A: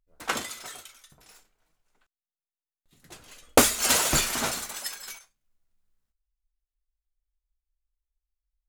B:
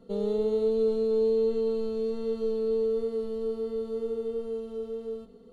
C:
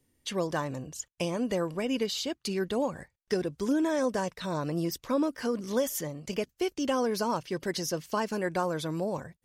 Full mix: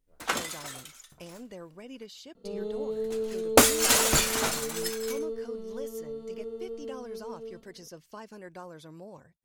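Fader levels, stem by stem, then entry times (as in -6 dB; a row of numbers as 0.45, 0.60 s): 0.0, -6.5, -14.5 dB; 0.00, 2.35, 0.00 s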